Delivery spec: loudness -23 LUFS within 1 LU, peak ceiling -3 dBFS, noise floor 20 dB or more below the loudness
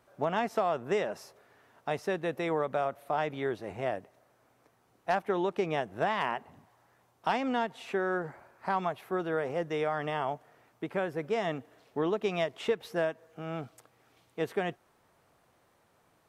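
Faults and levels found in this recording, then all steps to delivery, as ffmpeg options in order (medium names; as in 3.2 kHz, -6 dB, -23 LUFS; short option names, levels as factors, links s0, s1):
loudness -33.0 LUFS; peak level -16.5 dBFS; loudness target -23.0 LUFS
-> -af "volume=3.16"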